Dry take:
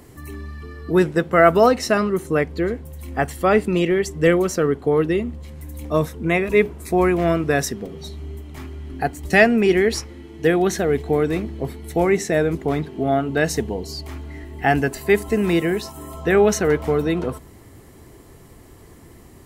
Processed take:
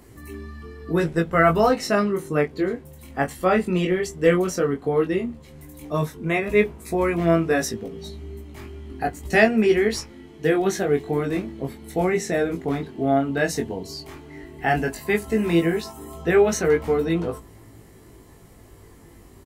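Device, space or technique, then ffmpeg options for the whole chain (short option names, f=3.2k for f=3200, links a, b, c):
double-tracked vocal: -filter_complex "[0:a]asettb=1/sr,asplit=3[a][b][c];[a]atrim=end=0.824[d];[b]atrim=start=0.82:end=1.7,asetpts=PTS-STARTPTS,afade=t=in:d=0.004:c=qsin,afade=t=out:st=0.876:d=0.004:c=qsin,asubboost=boost=10.5:cutoff=130[e];[c]atrim=start=1.696[f];[d][e]acrossfade=d=0.004:c1=hsin:c2=qsin[g];[g][f]acrossfade=d=0.004:c1=qsin:c2=hsin,asplit=2[h][i];[i]adelay=18,volume=-12.5dB[j];[h][j]amix=inputs=2:normalize=0,flanger=delay=17.5:depth=4.6:speed=0.12"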